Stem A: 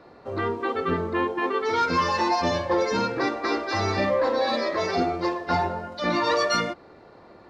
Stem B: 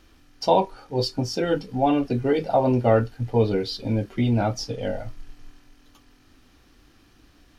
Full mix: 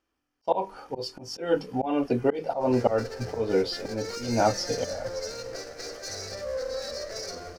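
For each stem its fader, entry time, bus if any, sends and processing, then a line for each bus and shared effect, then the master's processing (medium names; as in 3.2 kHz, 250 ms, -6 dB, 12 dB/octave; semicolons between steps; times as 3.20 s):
-7.0 dB, 2.35 s, no send, comb filter that takes the minimum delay 0.48 ms; peak limiter -20.5 dBFS, peak gain reduction 6.5 dB; FFT filter 130 Hz 0 dB, 310 Hz -16 dB, 530 Hz +2 dB, 970 Hz -16 dB, 1.5 kHz -6 dB, 3.4 kHz -14 dB, 5.2 kHz +11 dB, 8.3 kHz +5 dB
-1.0 dB, 0.00 s, no send, high-pass 87 Hz 6 dB/octave; peaking EQ 3.9 kHz -12 dB 0.38 oct; slow attack 231 ms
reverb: none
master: hum notches 50/100/150/200 Hz; gate -53 dBFS, range -22 dB; graphic EQ 125/500/1000/4000 Hz -4/+4/+5/+5 dB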